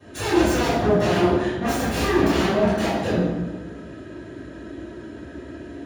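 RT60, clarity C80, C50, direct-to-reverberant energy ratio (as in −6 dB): 1.3 s, 1.0 dB, −4.0 dB, −21.0 dB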